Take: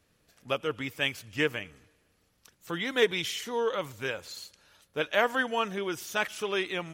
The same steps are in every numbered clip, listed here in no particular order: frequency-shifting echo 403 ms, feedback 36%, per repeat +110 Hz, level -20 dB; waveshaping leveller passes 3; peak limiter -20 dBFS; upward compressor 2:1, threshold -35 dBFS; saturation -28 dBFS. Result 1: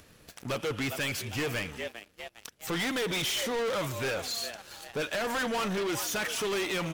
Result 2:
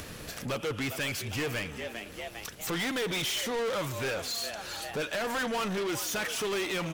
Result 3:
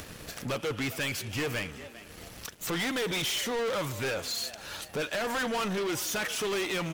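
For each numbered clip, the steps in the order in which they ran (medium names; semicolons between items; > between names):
frequency-shifting echo > peak limiter > waveshaping leveller > saturation > upward compressor; peak limiter > frequency-shifting echo > upward compressor > saturation > waveshaping leveller; upward compressor > peak limiter > waveshaping leveller > frequency-shifting echo > saturation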